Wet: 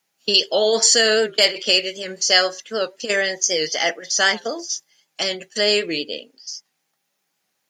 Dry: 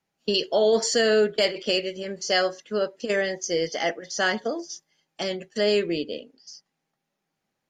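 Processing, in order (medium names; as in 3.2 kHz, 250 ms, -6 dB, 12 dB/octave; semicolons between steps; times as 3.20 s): tilt EQ +3 dB/octave; warped record 78 rpm, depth 100 cents; trim +4.5 dB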